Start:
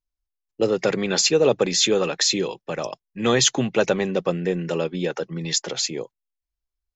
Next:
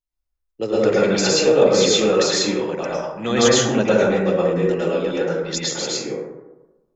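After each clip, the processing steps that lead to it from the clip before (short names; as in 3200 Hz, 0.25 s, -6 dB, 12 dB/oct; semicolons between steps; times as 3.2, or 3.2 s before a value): plate-style reverb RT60 1.1 s, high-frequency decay 0.35×, pre-delay 95 ms, DRR -7.5 dB; gain -4.5 dB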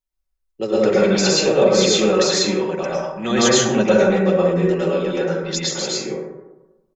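comb 5.3 ms, depth 54%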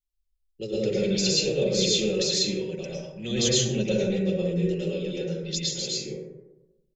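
EQ curve 130 Hz 0 dB, 260 Hz -12 dB, 470 Hz -8 dB, 760 Hz -23 dB, 1200 Hz -30 dB, 2800 Hz -5 dB, 4200 Hz -4 dB, 6200 Hz -6 dB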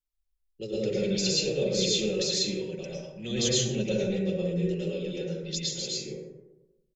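feedback echo 92 ms, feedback 35%, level -19.5 dB; gain -3 dB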